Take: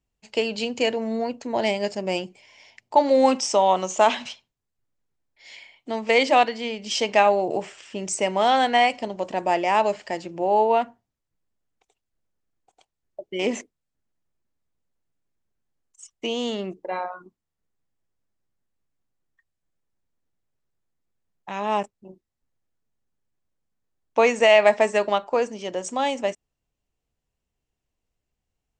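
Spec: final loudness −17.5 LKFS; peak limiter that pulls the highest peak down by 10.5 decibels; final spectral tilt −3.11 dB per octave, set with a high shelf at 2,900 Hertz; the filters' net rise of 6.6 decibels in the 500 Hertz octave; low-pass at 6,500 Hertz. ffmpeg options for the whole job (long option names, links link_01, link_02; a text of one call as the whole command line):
ffmpeg -i in.wav -af "lowpass=6500,equalizer=frequency=500:width_type=o:gain=8.5,highshelf=frequency=2900:gain=-6.5,volume=5dB,alimiter=limit=-6.5dB:level=0:latency=1" out.wav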